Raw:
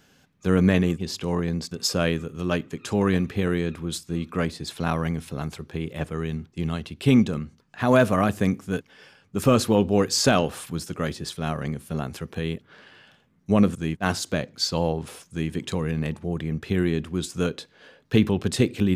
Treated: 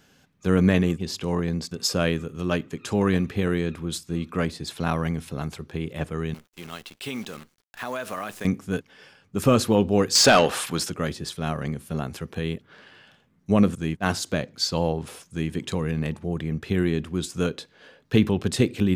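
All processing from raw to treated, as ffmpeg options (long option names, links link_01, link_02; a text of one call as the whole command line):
ffmpeg -i in.wav -filter_complex "[0:a]asettb=1/sr,asplit=3[link_01][link_02][link_03];[link_01]atrim=end=6.344[link_04];[link_02]atrim=start=6.34:end=8.45,asetpts=PTS-STARTPTS,afade=type=in:duration=0.004:curve=qsin,afade=type=out:start_time=2.106:duration=0.004:curve=qsin,highpass=frequency=1000:poles=1,acrusher=bits=8:dc=4:mix=0:aa=0.000001,acompressor=threshold=-27dB:ratio=4:attack=3.2:release=140:knee=1:detection=peak[link_05];[link_03]atrim=start=8.446[link_06];[link_04][link_05]acrossfade=duration=0.004:curve1=hsin:curve2=qsin[link_07];[link_07][link_06]acrossfade=duration=0.004:curve1=qsin:curve2=hsin,asettb=1/sr,asplit=3[link_08][link_09][link_10];[link_08]atrim=end=10.154[link_11];[link_09]atrim=start=10.15:end=10.9,asetpts=PTS-STARTPTS,afade=type=in:duration=0.004:curve=qsin,afade=type=out:start_time=0.746:duration=0.004:curve=qsin,asplit=2[link_12][link_13];[link_13]highpass=frequency=720:poles=1,volume=17dB,asoftclip=type=tanh:threshold=-6dB[link_14];[link_12][link_14]amix=inputs=2:normalize=0,lowpass=frequency=6300:poles=1,volume=-6dB,bandreject=frequency=53.87:width_type=h:width=4,bandreject=frequency=107.74:width_type=h:width=4[link_15];[link_10]atrim=start=10.896[link_16];[link_11][link_15]acrossfade=duration=0.004:curve1=hsin:curve2=qsin[link_17];[link_17][link_16]acrossfade=duration=0.004:curve1=qsin:curve2=hsin" out.wav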